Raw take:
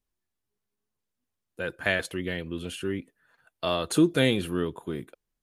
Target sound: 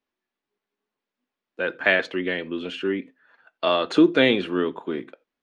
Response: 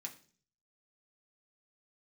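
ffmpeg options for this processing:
-filter_complex "[0:a]lowpass=f=6.9k:w=0.5412,lowpass=f=6.9k:w=1.3066,acrossover=split=200 4100:gain=0.0891 1 0.224[a][b][c];[a][b][c]amix=inputs=3:normalize=0,asplit=2[d][e];[1:a]atrim=start_sample=2205,atrim=end_sample=4410,lowpass=4.9k[f];[e][f]afir=irnorm=-1:irlink=0,volume=-4.5dB[g];[d][g]amix=inputs=2:normalize=0,volume=5dB"

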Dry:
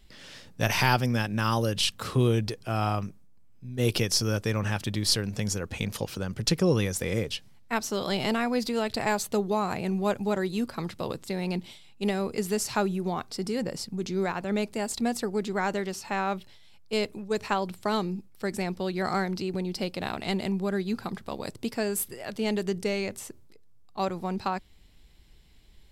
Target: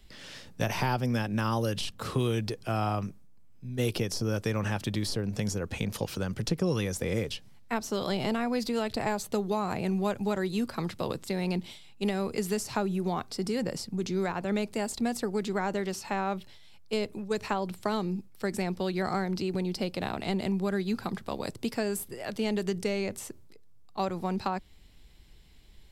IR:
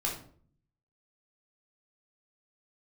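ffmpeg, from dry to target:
-filter_complex "[0:a]acrossover=split=150|1000[a][b][c];[a]acompressor=threshold=-35dB:ratio=4[d];[b]acompressor=threshold=-28dB:ratio=4[e];[c]acompressor=threshold=-37dB:ratio=4[f];[d][e][f]amix=inputs=3:normalize=0,volume=1dB"

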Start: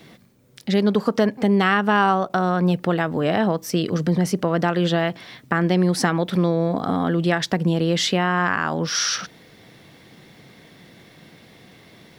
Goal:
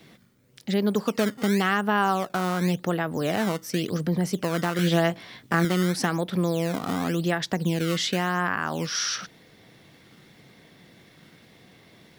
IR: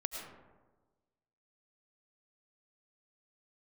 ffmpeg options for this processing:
-filter_complex "[0:a]acrossover=split=620[a][b];[a]acrusher=samples=15:mix=1:aa=0.000001:lfo=1:lforange=24:lforate=0.91[c];[c][b]amix=inputs=2:normalize=0,asettb=1/sr,asplit=3[d][e][f];[d]atrim=end=4.774[g];[e]atrim=start=4.77:end=5.65,asetpts=PTS-STARTPTS,afade=t=in:d=0.004:c=qsin,afade=t=out:st=0.876:d=0.004:c=qsin,asplit=2[h][i];[i]adelay=18,volume=-2dB[j];[h][j]amix=inputs=2:normalize=0,atrim=end_sample=38808[k];[f]atrim=start=5.646[l];[g][k]acrossfade=d=0.004:c1=hsin:c2=qsin[m];[m][l]acrossfade=d=0.004:c1=qsin:c2=hsin,volume=-5dB"

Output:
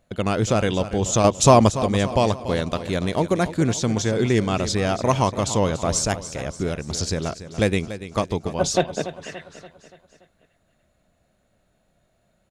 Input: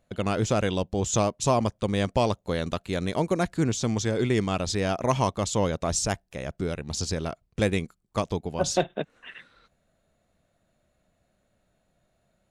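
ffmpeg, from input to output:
-filter_complex "[0:a]asettb=1/sr,asplit=3[a][b][c];[a]atrim=end=1.244[d];[b]atrim=start=1.24:end=1.82,asetpts=PTS-STARTPTS,afade=t=in:d=0.004:c=qsin,afade=t=out:st=0.576:d=0.004:c=qsin,acontrast=63[e];[c]atrim=start=1.816[f];[d][e]acrossfade=d=0.004:c1=hsin:c2=qsin[g];[g][f]acrossfade=d=0.004:c1=qsin:c2=hsin,aecho=1:1:287|574|861|1148|1435:0.224|0.112|0.056|0.028|0.014,volume=4dB"

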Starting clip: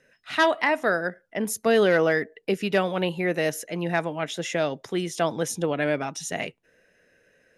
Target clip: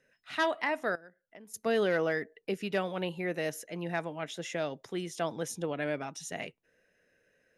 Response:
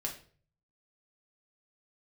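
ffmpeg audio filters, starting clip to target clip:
-filter_complex "[0:a]asettb=1/sr,asplit=3[a][b][c];[a]atrim=end=0.954[d];[b]atrim=start=0.95:end=1.54,asetpts=PTS-STARTPTS,afade=t=in:d=0.004:c=qsin,afade=t=out:st=0.586:d=0.004:c=qsin,acompressor=threshold=-41dB:ratio=10[e];[c]atrim=start=1.536[f];[d][e]acrossfade=d=0.004:c1=hsin:c2=qsin[g];[g][f]acrossfade=d=0.004:c1=qsin:c2=hsin,volume=-8.5dB"

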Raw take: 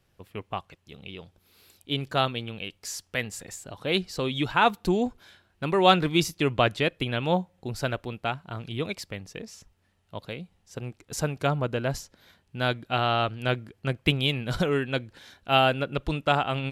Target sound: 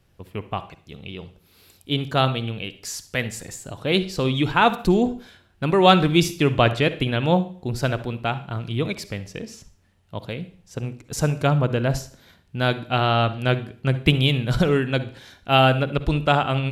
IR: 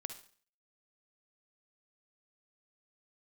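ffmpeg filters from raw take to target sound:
-filter_complex "[0:a]asplit=2[a][b];[1:a]atrim=start_sample=2205,lowshelf=f=330:g=8.5[c];[b][c]afir=irnorm=-1:irlink=0,volume=3dB[d];[a][d]amix=inputs=2:normalize=0,volume=-2.5dB"

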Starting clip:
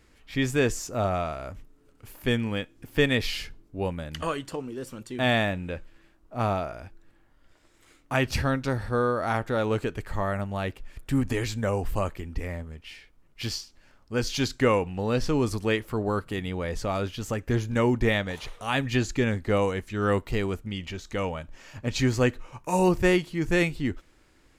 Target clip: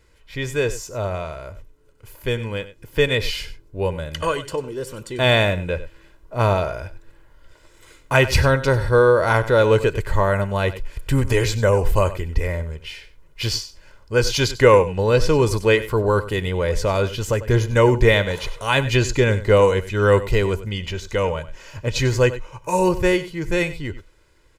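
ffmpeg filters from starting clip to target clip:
-filter_complex "[0:a]asplit=2[a][b];[b]aecho=0:1:96:0.178[c];[a][c]amix=inputs=2:normalize=0,dynaudnorm=f=900:g=9:m=11.5dB,aecho=1:1:2:0.61"

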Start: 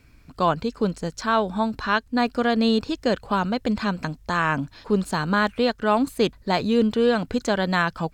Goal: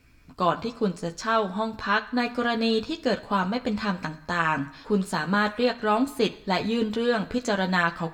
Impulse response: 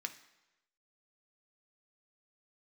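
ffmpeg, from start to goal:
-filter_complex "[0:a]bandreject=f=50:t=h:w=6,bandreject=f=100:t=h:w=6,bandreject=f=150:t=h:w=6,asplit=2[a][b];[1:a]atrim=start_sample=2205,lowshelf=f=190:g=-9,adelay=12[c];[b][c]afir=irnorm=-1:irlink=0,volume=-0.5dB[d];[a][d]amix=inputs=2:normalize=0,volume=-3.5dB"

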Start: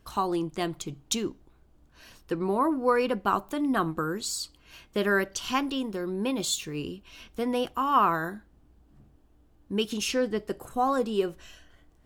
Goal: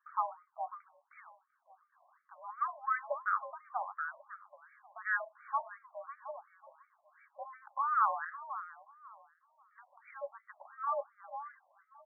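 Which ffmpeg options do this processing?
-filter_complex "[0:a]asplit=2[a][b];[b]adelay=546,lowpass=f=1k:p=1,volume=-10.5dB,asplit=2[c][d];[d]adelay=546,lowpass=f=1k:p=1,volume=0.32,asplit=2[e][f];[f]adelay=546,lowpass=f=1k:p=1,volume=0.32[g];[a][c][e][g]amix=inputs=4:normalize=0,highpass=f=480:t=q:w=0.5412,highpass=f=480:t=q:w=1.307,lowpass=f=2.1k:t=q:w=0.5176,lowpass=f=2.1k:t=q:w=0.7071,lowpass=f=2.1k:t=q:w=1.932,afreqshift=70,afftfilt=real='re*between(b*sr/1024,760*pow(1700/760,0.5+0.5*sin(2*PI*2.8*pts/sr))/1.41,760*pow(1700/760,0.5+0.5*sin(2*PI*2.8*pts/sr))*1.41)':imag='im*between(b*sr/1024,760*pow(1700/760,0.5+0.5*sin(2*PI*2.8*pts/sr))/1.41,760*pow(1700/760,0.5+0.5*sin(2*PI*2.8*pts/sr))*1.41)':win_size=1024:overlap=0.75,volume=-4dB"

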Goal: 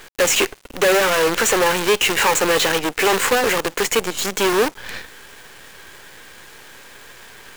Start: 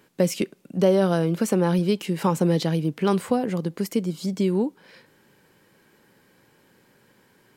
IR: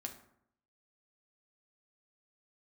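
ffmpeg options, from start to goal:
-filter_complex "[0:a]asplit=2[a][b];[b]highpass=f=720:p=1,volume=29dB,asoftclip=type=tanh:threshold=-7dB[c];[a][c]amix=inputs=2:normalize=0,lowpass=f=4.8k:p=1,volume=-6dB,highpass=420,equalizer=f=430:t=q:w=4:g=4,equalizer=f=660:t=q:w=4:g=-7,equalizer=f=1.7k:t=q:w=4:g=4,equalizer=f=2.6k:t=q:w=4:g=4,equalizer=f=4.9k:t=q:w=4:g=-8,equalizer=f=7k:t=q:w=4:g=8,lowpass=f=9k:w=0.5412,lowpass=f=9k:w=1.3066,acrusher=bits=4:dc=4:mix=0:aa=0.000001"

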